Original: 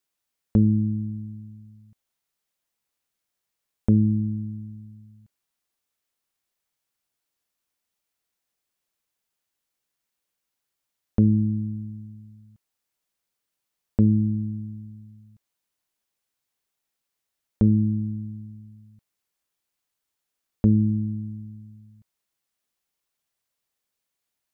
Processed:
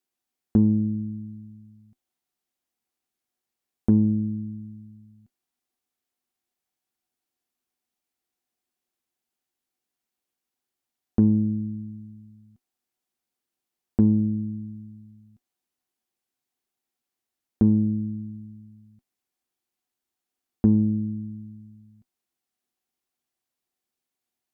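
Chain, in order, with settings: small resonant body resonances 250/350/740 Hz, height 11 dB, ringing for 70 ms; added harmonics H 6 -36 dB, 7 -44 dB, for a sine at -2.5 dBFS; gain -4 dB

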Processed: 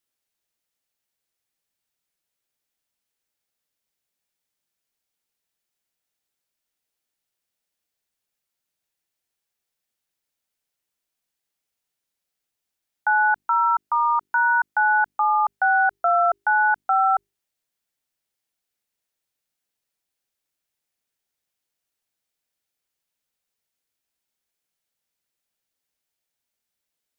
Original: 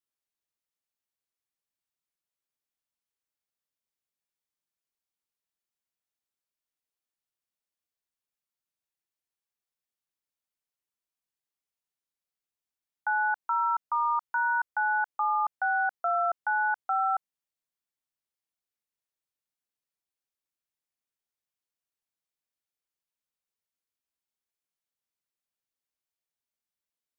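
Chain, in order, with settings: bell 1100 Hz -4.5 dB 0.41 oct; notches 50/100/150/200/250/300/350/400 Hz; gain +9 dB

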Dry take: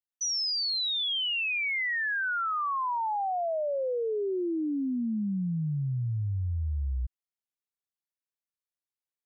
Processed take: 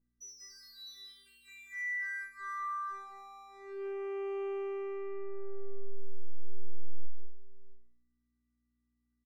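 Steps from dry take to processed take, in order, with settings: 3.19–3.86 HPF 270 Hz 24 dB/oct; robotiser 393 Hz; overdrive pedal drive 20 dB, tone 2900 Hz, clips at -34 dBFS; fixed phaser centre 810 Hz, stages 6; hum 60 Hz, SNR 27 dB; resonator bank E3 minor, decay 0.57 s; on a send: tapped delay 0.187/0.658 s -3.5/-14.5 dB; on the sum: Doppler distortion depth 0.17 ms; gain +12.5 dB

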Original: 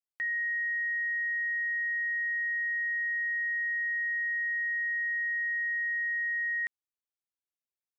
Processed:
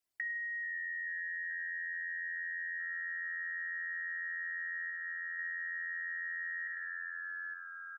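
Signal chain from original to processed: formant sharpening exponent 2; echo 99 ms -7.5 dB; vocal rider; frequency-shifting echo 0.433 s, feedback 64%, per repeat -86 Hz, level -15 dB; reverb removal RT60 0.61 s; 4.9–5.39 bell 1900 Hz -4.5 dB; shoebox room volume 4000 m³, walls furnished, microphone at 3 m; compressor 4:1, threshold -42 dBFS, peak gain reduction 11 dB; gain +3 dB

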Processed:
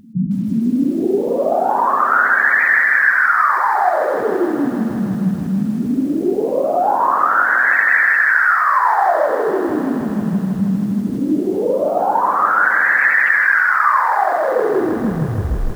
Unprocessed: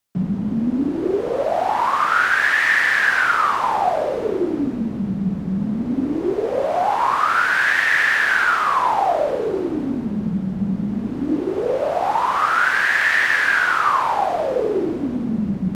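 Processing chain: tape stop at the end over 0.85 s; spectral gate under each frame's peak -15 dB strong; reverse echo 0.478 s -23.5 dB; lo-fi delay 0.158 s, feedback 80%, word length 7-bit, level -11 dB; gain +3.5 dB

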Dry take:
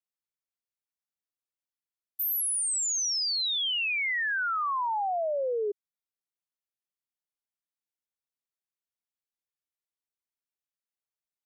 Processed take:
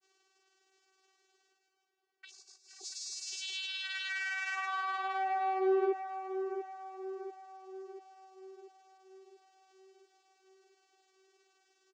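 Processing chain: high shelf 5500 Hz +7 dB; comb 4.7 ms, depth 45%; limiter -28 dBFS, peak gain reduction 11.5 dB; reverse; upward compressor, threshold -40 dBFS; reverse; overloaded stage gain 35 dB; vocoder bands 8, saw 398 Hz; grains 0.106 s, grains 20/s, pitch spread up and down by 0 st; darkening echo 0.661 s, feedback 57%, low-pass 2000 Hz, level -8 dB; speed mistake 25 fps video run at 24 fps; gain +4 dB

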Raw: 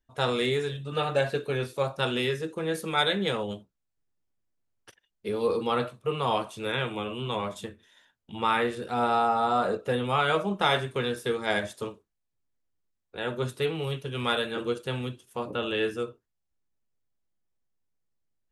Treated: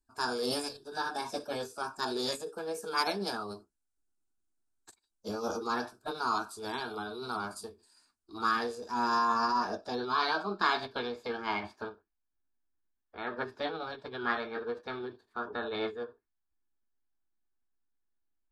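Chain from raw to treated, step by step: fixed phaser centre 530 Hz, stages 6; low-pass sweep 6500 Hz -> 1900 Hz, 8.47–11.99; formant shift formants +5 st; gain -2 dB

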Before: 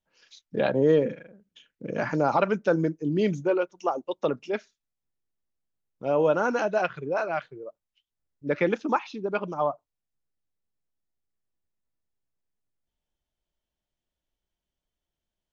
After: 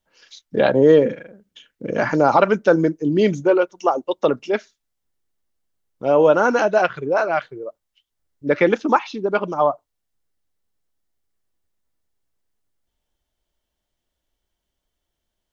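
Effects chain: bell 160 Hz -4.5 dB 0.75 oct; notch 2500 Hz, Q 18; gain +8.5 dB

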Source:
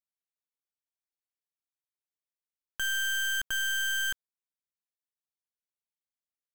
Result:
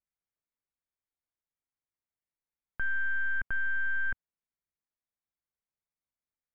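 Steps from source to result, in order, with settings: elliptic low-pass 2300 Hz, stop band 40 dB; low shelf 180 Hz +10 dB

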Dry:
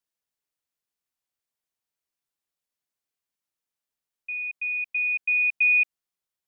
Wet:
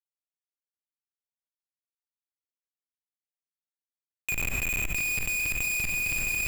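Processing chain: 4.32–4.9 bell 2300 Hz -13 dB 0.26 oct; chorus voices 6, 0.8 Hz, delay 17 ms, depth 3.4 ms; added harmonics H 4 -32 dB, 5 -41 dB, 7 -33 dB, 8 -35 dB, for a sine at -14 dBFS; Schmitt trigger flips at -40.5 dBFS; swung echo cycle 0.886 s, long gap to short 3:1, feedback 48%, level -13 dB; on a send at -16.5 dB: reverb RT60 1.4 s, pre-delay 4 ms; on the sum: fast leveller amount 100%; gain +5 dB

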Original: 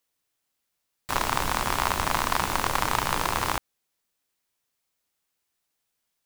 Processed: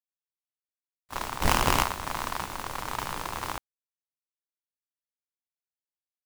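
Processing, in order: 1.41–1.83 half-waves squared off; limiter -9.5 dBFS, peak gain reduction 4 dB; expander -20 dBFS

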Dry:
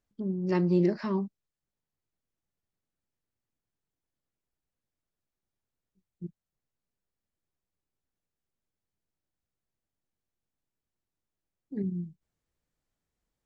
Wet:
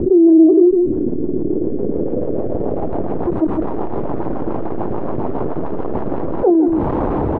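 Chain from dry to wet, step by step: zero-crossing step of -39 dBFS; LPF 1500 Hz 6 dB/oct; bell 190 Hz +10 dB 1.4 oct; wide varispeed 1.82×; rotary speaker horn 7 Hz, later 1 Hz, at 5.79; on a send: echo 0.154 s -13.5 dB; on the sum: low-pass sweep 350 Hz -> 910 Hz, 1.39–3.41; fast leveller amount 70%

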